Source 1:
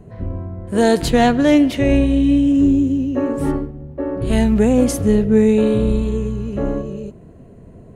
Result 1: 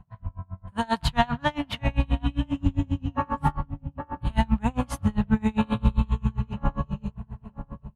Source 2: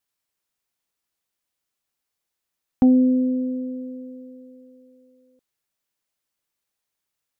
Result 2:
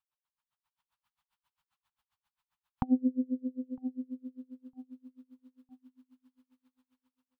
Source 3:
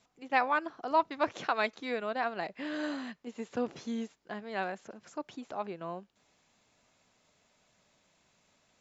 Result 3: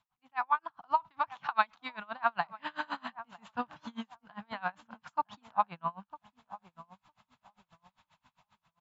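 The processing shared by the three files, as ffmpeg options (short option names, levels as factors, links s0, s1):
-filter_complex "[0:a]firequalizer=gain_entry='entry(150,0);entry(380,-24);entry(900,8);entry(2000,-4);entry(3000,0);entry(5900,-12)':delay=0.05:min_phase=1,dynaudnorm=f=290:g=5:m=4.22,asplit=2[s0][s1];[s1]adelay=956,lowpass=f=1100:p=1,volume=0.224,asplit=2[s2][s3];[s3]adelay=956,lowpass=f=1100:p=1,volume=0.34,asplit=2[s4][s5];[s5]adelay=956,lowpass=f=1100:p=1,volume=0.34[s6];[s0][s2][s4][s6]amix=inputs=4:normalize=0,aeval=exprs='val(0)*pow(10,-31*(0.5-0.5*cos(2*PI*7.5*n/s))/20)':c=same,volume=0.631"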